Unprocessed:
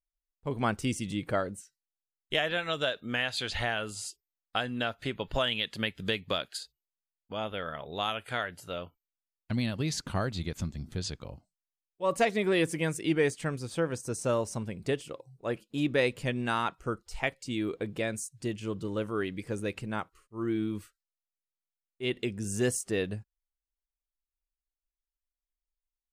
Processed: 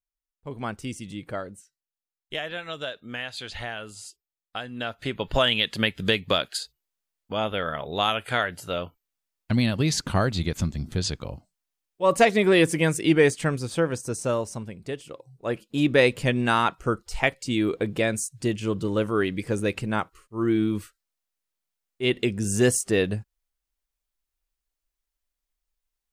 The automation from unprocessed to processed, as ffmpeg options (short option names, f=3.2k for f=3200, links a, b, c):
-af "volume=19dB,afade=t=in:st=4.7:d=0.77:silence=0.281838,afade=t=out:st=13.4:d=1.49:silence=0.281838,afade=t=in:st=14.89:d=1.11:silence=0.281838"